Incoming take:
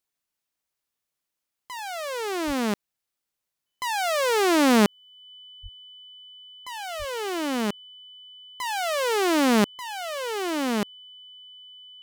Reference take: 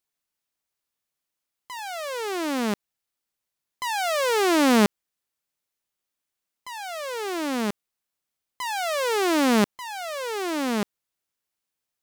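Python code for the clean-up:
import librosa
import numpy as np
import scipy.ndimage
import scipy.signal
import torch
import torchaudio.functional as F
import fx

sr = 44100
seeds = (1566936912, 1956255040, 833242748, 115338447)

y = fx.notch(x, sr, hz=3000.0, q=30.0)
y = fx.highpass(y, sr, hz=140.0, slope=24, at=(2.46, 2.58), fade=0.02)
y = fx.highpass(y, sr, hz=140.0, slope=24, at=(5.62, 5.74), fade=0.02)
y = fx.highpass(y, sr, hz=140.0, slope=24, at=(6.98, 7.1), fade=0.02)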